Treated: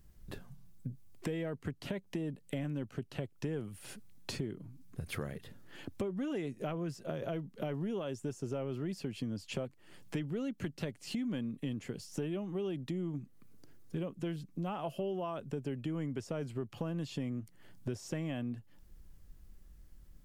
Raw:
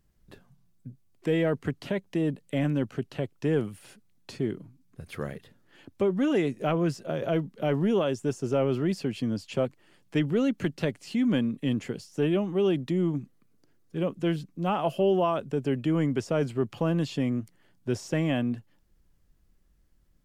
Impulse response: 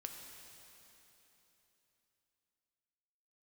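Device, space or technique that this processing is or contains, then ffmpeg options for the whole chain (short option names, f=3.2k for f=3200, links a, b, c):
ASMR close-microphone chain: -af "lowshelf=f=110:g=7.5,acompressor=threshold=-40dB:ratio=5,highshelf=f=8k:g=5.5,volume=3.5dB"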